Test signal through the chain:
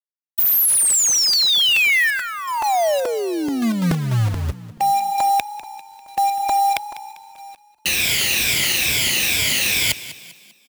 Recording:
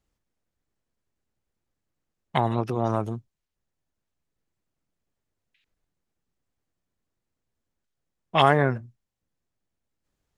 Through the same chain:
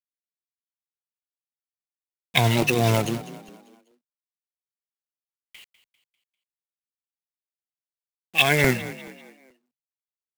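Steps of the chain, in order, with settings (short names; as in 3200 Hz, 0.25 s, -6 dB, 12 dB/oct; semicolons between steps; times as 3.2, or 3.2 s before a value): moving spectral ripple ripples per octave 1.7, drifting -2.3 Hz, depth 13 dB; HPF 57 Hz 24 dB/oct; resonant high shelf 1700 Hz +11.5 dB, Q 3; reverse; compressor 12:1, threshold -20 dBFS; reverse; companded quantiser 4-bit; on a send: frequency-shifting echo 0.198 s, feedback 44%, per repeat +32 Hz, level -15.5 dB; on the sum: crackling interface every 0.43 s, samples 128, repeat, from 0.9; gain +4.5 dB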